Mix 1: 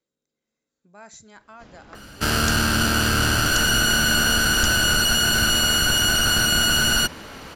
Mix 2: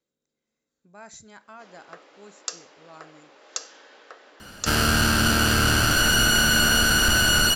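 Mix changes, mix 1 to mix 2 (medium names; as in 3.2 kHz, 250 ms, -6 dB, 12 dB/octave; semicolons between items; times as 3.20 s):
first sound: add high-pass 380 Hz 24 dB/octave; second sound: entry +2.45 s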